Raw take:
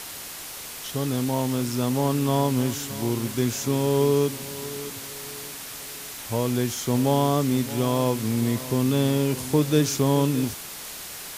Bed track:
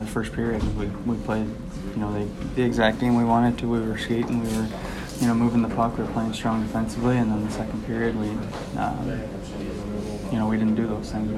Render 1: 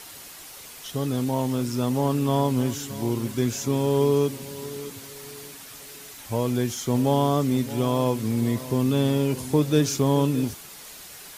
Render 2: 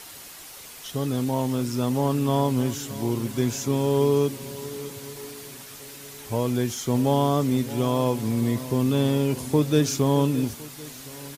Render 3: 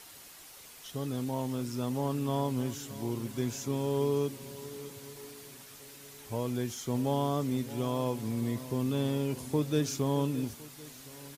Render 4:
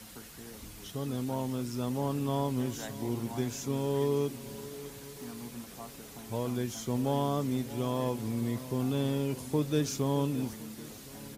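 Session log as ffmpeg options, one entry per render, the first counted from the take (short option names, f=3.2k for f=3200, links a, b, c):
-af "afftdn=nr=7:nf=-38"
-af "aecho=1:1:1061|2122|3183|4244:0.0794|0.0405|0.0207|0.0105"
-af "volume=-8.5dB"
-filter_complex "[1:a]volume=-23.5dB[a];[0:a][a]amix=inputs=2:normalize=0"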